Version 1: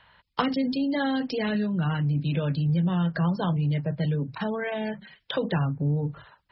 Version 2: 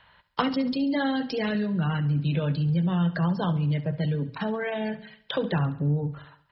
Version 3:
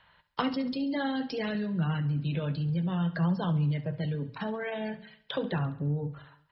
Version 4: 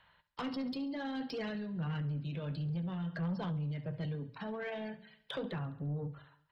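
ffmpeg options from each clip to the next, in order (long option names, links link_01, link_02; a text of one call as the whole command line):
ffmpeg -i in.wav -af "aecho=1:1:69|138|207|276|345:0.168|0.0856|0.0437|0.0223|0.0114" out.wav
ffmpeg -i in.wav -af "flanger=delay=5.3:depth=4.4:regen=80:speed=0.6:shape=triangular" out.wav
ffmpeg -i in.wav -af "tremolo=f=1.5:d=0.35,asoftclip=type=tanh:threshold=-27dB,volume=-4dB" out.wav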